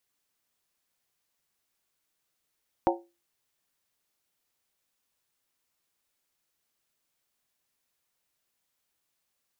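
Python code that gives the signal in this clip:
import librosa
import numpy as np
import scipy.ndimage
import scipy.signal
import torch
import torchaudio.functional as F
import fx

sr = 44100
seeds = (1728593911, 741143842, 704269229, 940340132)

y = fx.strike_skin(sr, length_s=0.63, level_db=-21.5, hz=344.0, decay_s=0.29, tilt_db=0.5, modes=5)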